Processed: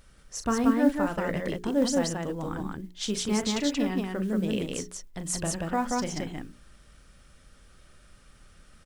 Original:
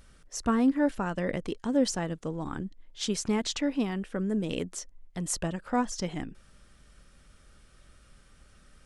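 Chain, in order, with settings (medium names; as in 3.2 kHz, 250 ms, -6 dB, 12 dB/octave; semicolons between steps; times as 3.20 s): hum notches 60/120/180/240/300/360/420 Hz; modulation noise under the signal 32 dB; loudspeakers at several distances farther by 13 m -10 dB, 62 m -2 dB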